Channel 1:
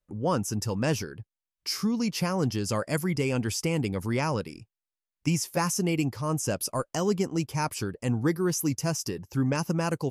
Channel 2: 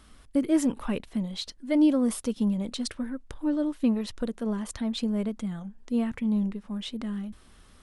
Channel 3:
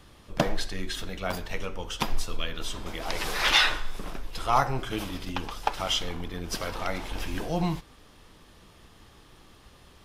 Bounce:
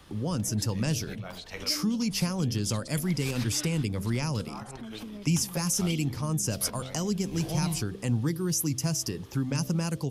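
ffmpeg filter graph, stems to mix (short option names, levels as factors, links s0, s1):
-filter_complex "[0:a]volume=1.33[s0];[1:a]acompressor=threshold=0.0316:ratio=6,volume=0.376,asplit=2[s1][s2];[2:a]highpass=53,alimiter=limit=0.15:level=0:latency=1:release=266,volume=1.06[s3];[s2]apad=whole_len=443127[s4];[s3][s4]sidechaincompress=threshold=0.00224:ratio=16:attack=12:release=129[s5];[s0][s1][s5]amix=inputs=3:normalize=0,bandreject=f=65.14:t=h:w=4,bandreject=f=130.28:t=h:w=4,bandreject=f=195.42:t=h:w=4,bandreject=f=260.56:t=h:w=4,bandreject=f=325.7:t=h:w=4,bandreject=f=390.84:t=h:w=4,bandreject=f=455.98:t=h:w=4,bandreject=f=521.12:t=h:w=4,bandreject=f=586.26:t=h:w=4,bandreject=f=651.4:t=h:w=4,bandreject=f=716.54:t=h:w=4,acrossover=split=220|3000[s6][s7][s8];[s7]acompressor=threshold=0.0178:ratio=6[s9];[s6][s9][s8]amix=inputs=3:normalize=0"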